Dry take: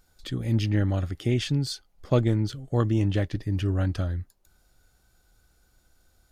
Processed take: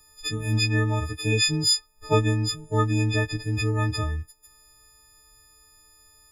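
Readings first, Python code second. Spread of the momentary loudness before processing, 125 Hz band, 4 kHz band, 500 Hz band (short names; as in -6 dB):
9 LU, +0.5 dB, +11.0 dB, +1.5 dB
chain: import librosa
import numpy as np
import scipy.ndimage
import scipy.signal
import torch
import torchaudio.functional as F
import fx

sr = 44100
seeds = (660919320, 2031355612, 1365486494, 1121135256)

y = fx.freq_snap(x, sr, grid_st=6)
y = y + 0.44 * np.pad(y, (int(2.4 * sr / 1000.0), 0))[:len(y)]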